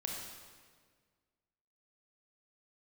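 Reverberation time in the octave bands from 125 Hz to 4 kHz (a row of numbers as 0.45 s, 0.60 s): 2.0 s, 1.9 s, 1.8 s, 1.6 s, 1.5 s, 1.4 s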